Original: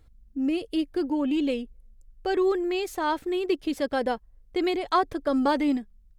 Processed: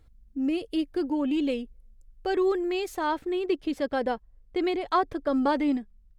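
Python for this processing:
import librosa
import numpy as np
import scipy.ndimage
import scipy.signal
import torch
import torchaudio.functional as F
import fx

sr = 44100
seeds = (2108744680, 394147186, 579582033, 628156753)

y = fx.high_shelf(x, sr, hz=5400.0, db=fx.steps((0.0, -2.0), (3.06, -9.0)))
y = F.gain(torch.from_numpy(y), -1.0).numpy()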